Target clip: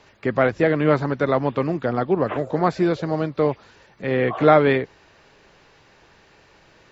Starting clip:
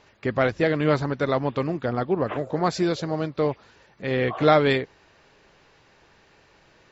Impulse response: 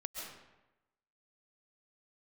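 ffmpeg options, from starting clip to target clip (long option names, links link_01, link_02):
-filter_complex "[0:a]acrossover=split=2700[link_01][link_02];[link_02]acompressor=threshold=-49dB:ratio=4:attack=1:release=60[link_03];[link_01][link_03]amix=inputs=2:normalize=0,acrossover=split=120|1200[link_04][link_05][link_06];[link_04]alimiter=level_in=17dB:limit=-24dB:level=0:latency=1,volume=-17dB[link_07];[link_07][link_05][link_06]amix=inputs=3:normalize=0,volume=3.5dB"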